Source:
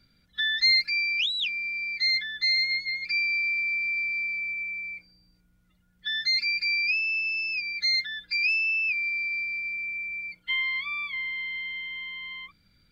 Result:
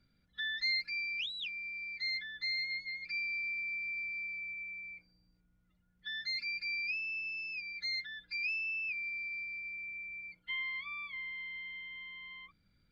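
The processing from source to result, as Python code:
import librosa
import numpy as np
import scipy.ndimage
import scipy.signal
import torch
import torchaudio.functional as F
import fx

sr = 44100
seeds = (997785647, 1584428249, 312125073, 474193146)

y = fx.high_shelf(x, sr, hz=2900.0, db=-9.0)
y = F.gain(torch.from_numpy(y), -7.0).numpy()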